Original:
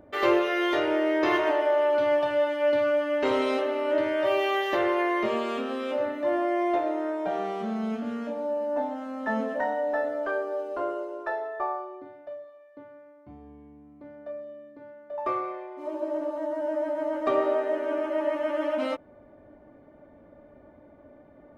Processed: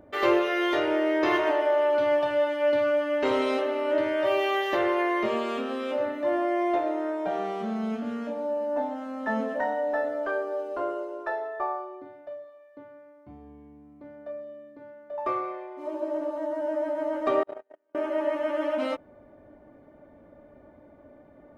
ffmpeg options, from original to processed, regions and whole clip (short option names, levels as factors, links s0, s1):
-filter_complex "[0:a]asettb=1/sr,asplit=3[s0][s1][s2];[s0]atrim=end=17.434[s3];[s1]atrim=start=17.43:end=17.95,asetpts=PTS-STARTPTS,afade=t=in:d=0.004:c=qsin,afade=t=out:st=0.516:d=0.004:c=qsin,tremolo=f=110:d=0.333,agate=range=0.00631:threshold=0.0631:ratio=16:release=100:detection=peak[s4];[s2]atrim=start=17.946[s5];[s3][s4]acrossfade=d=0.004:c1=hsin:c2=qsin[s6];[s6][s5]acrossfade=d=0.004:c1=qsin:c2=hsin"